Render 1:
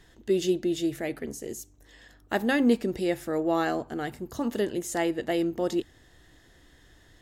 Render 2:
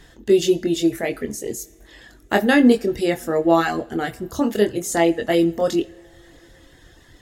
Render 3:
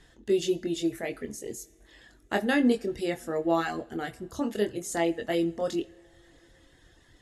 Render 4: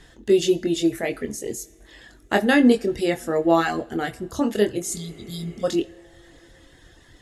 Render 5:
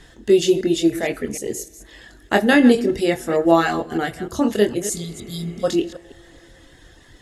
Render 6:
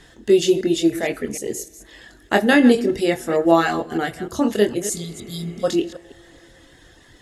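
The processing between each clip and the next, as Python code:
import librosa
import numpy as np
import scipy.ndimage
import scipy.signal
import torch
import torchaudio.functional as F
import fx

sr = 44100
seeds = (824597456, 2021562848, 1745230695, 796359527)

y1 = fx.doubler(x, sr, ms=24.0, db=-5.5)
y1 = fx.dereverb_blind(y1, sr, rt60_s=0.8)
y1 = fx.rev_double_slope(y1, sr, seeds[0], early_s=0.5, late_s=4.4, knee_db=-21, drr_db=15.0)
y1 = y1 * librosa.db_to_amplitude(8.0)
y2 = scipy.signal.sosfilt(scipy.signal.cheby1(8, 1.0, 12000.0, 'lowpass', fs=sr, output='sos'), y1)
y2 = y2 * librosa.db_to_amplitude(-8.5)
y3 = fx.spec_repair(y2, sr, seeds[1], start_s=4.89, length_s=0.72, low_hz=240.0, high_hz=3200.0, source='before')
y3 = y3 * librosa.db_to_amplitude(7.5)
y4 = fx.reverse_delay(y3, sr, ms=153, wet_db=-13.0)
y4 = y4 * librosa.db_to_amplitude(3.0)
y5 = fx.low_shelf(y4, sr, hz=72.0, db=-6.5)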